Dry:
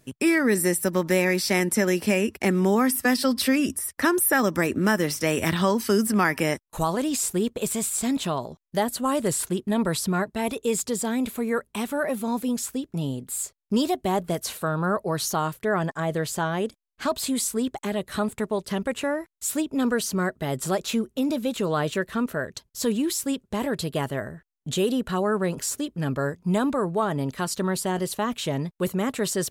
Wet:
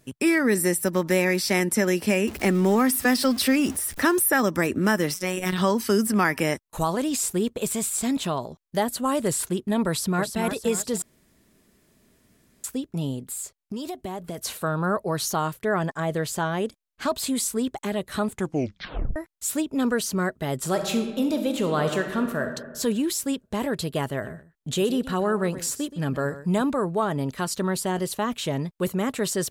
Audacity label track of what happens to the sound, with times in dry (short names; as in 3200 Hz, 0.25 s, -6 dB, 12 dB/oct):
2.270000	4.220000	zero-crossing step of -33.5 dBFS
5.140000	5.580000	robotiser 184 Hz
9.890000	10.390000	echo throw 0.29 s, feedback 45%, level -7 dB
11.020000	12.640000	room tone
13.220000	14.380000	compressor 12:1, threshold -28 dBFS
18.320000	18.320000	tape stop 0.84 s
20.650000	22.550000	reverb throw, RT60 1.3 s, DRR 5.5 dB
24.100000	26.620000	echo 0.124 s -14.5 dB